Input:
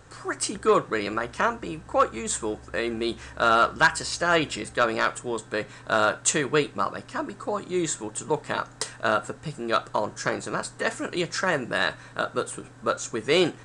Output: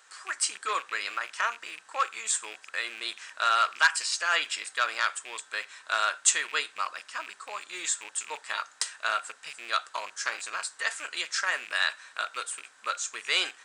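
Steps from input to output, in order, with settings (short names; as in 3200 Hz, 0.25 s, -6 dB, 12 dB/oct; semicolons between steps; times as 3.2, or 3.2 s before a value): rattling part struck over -40 dBFS, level -29 dBFS; HPF 1500 Hz 12 dB/oct; gain +1 dB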